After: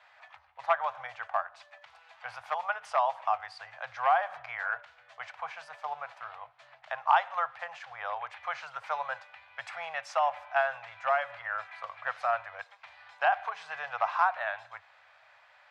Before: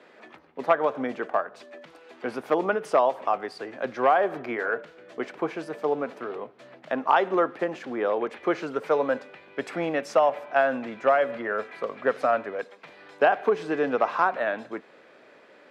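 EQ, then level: elliptic band-stop 100–760 Hz, stop band 50 dB; air absorption 54 m; -1.5 dB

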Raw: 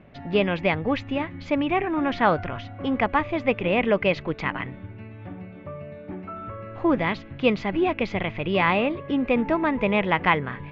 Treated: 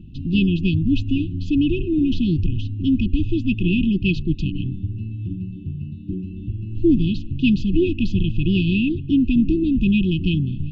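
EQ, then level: brick-wall FIR band-stop 380–2500 Hz; low shelf 69 Hz +9.5 dB; low shelf 240 Hz +9.5 dB; +2.5 dB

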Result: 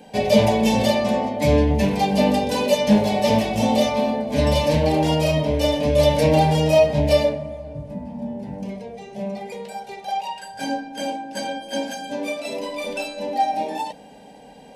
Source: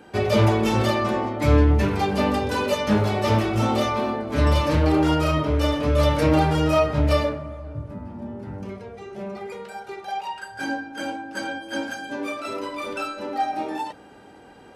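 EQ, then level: fixed phaser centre 350 Hz, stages 6; +6.0 dB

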